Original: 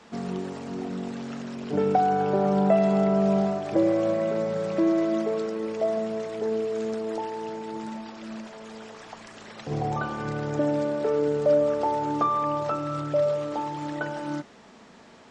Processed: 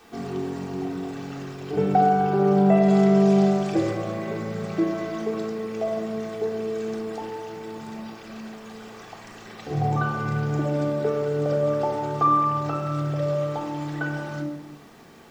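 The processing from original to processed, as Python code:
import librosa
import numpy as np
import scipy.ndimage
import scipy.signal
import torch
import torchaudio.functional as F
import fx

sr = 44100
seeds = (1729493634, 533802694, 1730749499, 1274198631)

y = fx.high_shelf(x, sr, hz=2700.0, db=9.0, at=(2.88, 3.91))
y = fx.quant_dither(y, sr, seeds[0], bits=10, dither='none')
y = fx.room_shoebox(y, sr, seeds[1], volume_m3=2600.0, walls='furnished', distance_m=3.6)
y = F.gain(torch.from_numpy(y), -2.0).numpy()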